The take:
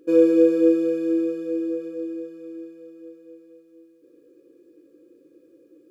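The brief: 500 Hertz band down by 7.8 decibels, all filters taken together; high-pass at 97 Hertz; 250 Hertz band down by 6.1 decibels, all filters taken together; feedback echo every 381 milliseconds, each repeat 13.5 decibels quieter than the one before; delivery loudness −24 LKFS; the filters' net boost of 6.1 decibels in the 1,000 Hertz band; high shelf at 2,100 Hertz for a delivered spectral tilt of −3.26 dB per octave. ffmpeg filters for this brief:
ffmpeg -i in.wav -af "highpass=97,equalizer=frequency=250:width_type=o:gain=-5,equalizer=frequency=500:width_type=o:gain=-9,equalizer=frequency=1000:width_type=o:gain=7.5,highshelf=frequency=2100:gain=7,aecho=1:1:381|762:0.211|0.0444,volume=4.5dB" out.wav

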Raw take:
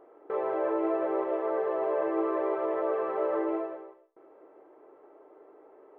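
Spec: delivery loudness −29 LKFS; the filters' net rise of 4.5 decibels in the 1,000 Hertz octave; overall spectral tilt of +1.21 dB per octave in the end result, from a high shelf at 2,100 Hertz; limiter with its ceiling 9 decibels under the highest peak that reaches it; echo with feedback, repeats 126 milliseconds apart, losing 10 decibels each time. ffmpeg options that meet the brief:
ffmpeg -i in.wav -af "equalizer=frequency=1000:width_type=o:gain=7,highshelf=frequency=2100:gain=-6,alimiter=limit=-24dB:level=0:latency=1,aecho=1:1:126|252|378|504:0.316|0.101|0.0324|0.0104,volume=3.5dB" out.wav

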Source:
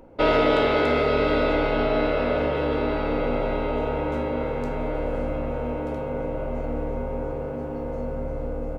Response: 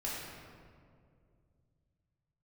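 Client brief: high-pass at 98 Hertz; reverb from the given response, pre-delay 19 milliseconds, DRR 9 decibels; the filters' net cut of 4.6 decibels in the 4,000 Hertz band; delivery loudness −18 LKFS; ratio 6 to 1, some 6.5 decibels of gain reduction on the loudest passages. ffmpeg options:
-filter_complex "[0:a]highpass=98,equalizer=frequency=4000:width_type=o:gain=-6,acompressor=threshold=-23dB:ratio=6,asplit=2[link_01][link_02];[1:a]atrim=start_sample=2205,adelay=19[link_03];[link_02][link_03]afir=irnorm=-1:irlink=0,volume=-12.5dB[link_04];[link_01][link_04]amix=inputs=2:normalize=0,volume=10.5dB"

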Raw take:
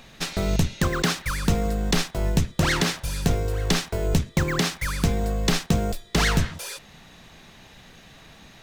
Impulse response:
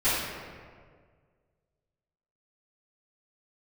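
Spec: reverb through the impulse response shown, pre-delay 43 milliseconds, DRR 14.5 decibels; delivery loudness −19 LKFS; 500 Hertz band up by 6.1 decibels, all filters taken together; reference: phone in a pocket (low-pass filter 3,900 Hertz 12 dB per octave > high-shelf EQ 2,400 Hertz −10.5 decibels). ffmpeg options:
-filter_complex "[0:a]equalizer=frequency=500:width_type=o:gain=8,asplit=2[link_01][link_02];[1:a]atrim=start_sample=2205,adelay=43[link_03];[link_02][link_03]afir=irnorm=-1:irlink=0,volume=-29dB[link_04];[link_01][link_04]amix=inputs=2:normalize=0,lowpass=3900,highshelf=frequency=2400:gain=-10.5,volume=5dB"

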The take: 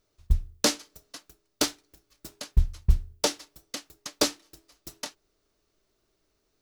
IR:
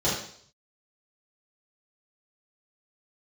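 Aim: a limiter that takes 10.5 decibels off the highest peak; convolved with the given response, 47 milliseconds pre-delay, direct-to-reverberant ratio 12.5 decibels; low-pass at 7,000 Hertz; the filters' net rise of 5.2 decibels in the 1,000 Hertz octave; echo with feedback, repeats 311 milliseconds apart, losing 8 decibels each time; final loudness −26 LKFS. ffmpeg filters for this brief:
-filter_complex "[0:a]lowpass=7000,equalizer=frequency=1000:width_type=o:gain=6.5,alimiter=limit=-17.5dB:level=0:latency=1,aecho=1:1:311|622|933|1244|1555:0.398|0.159|0.0637|0.0255|0.0102,asplit=2[link_01][link_02];[1:a]atrim=start_sample=2205,adelay=47[link_03];[link_02][link_03]afir=irnorm=-1:irlink=0,volume=-25.5dB[link_04];[link_01][link_04]amix=inputs=2:normalize=0,volume=9.5dB"

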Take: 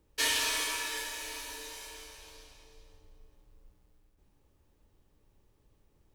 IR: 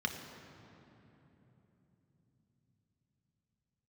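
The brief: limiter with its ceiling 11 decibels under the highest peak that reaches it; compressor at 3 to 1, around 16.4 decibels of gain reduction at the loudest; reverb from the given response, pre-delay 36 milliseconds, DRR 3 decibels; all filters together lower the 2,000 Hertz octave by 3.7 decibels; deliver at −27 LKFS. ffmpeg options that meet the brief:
-filter_complex "[0:a]equalizer=frequency=2000:width_type=o:gain=-4.5,acompressor=threshold=-50dB:ratio=3,alimiter=level_in=19dB:limit=-24dB:level=0:latency=1,volume=-19dB,asplit=2[link_01][link_02];[1:a]atrim=start_sample=2205,adelay=36[link_03];[link_02][link_03]afir=irnorm=-1:irlink=0,volume=-7.5dB[link_04];[link_01][link_04]amix=inputs=2:normalize=0,volume=23.5dB"

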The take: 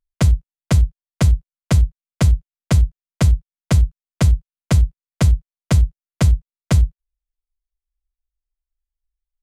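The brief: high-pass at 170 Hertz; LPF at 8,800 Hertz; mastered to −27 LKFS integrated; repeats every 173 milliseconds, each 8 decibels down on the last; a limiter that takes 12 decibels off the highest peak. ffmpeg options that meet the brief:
ffmpeg -i in.wav -af "highpass=170,lowpass=8800,alimiter=limit=-21dB:level=0:latency=1,aecho=1:1:173|346|519|692|865:0.398|0.159|0.0637|0.0255|0.0102,volume=7.5dB" out.wav

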